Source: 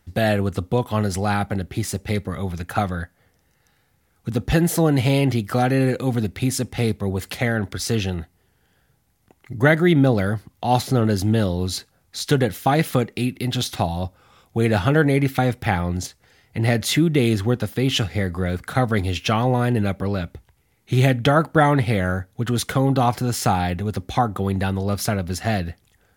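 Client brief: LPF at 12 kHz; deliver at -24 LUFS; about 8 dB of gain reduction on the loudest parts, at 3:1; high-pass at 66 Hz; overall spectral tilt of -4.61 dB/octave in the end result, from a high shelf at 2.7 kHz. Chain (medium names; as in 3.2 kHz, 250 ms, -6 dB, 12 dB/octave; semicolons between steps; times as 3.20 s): high-pass 66 Hz; low-pass 12 kHz; treble shelf 2.7 kHz +6.5 dB; compression 3:1, threshold -21 dBFS; trim +1.5 dB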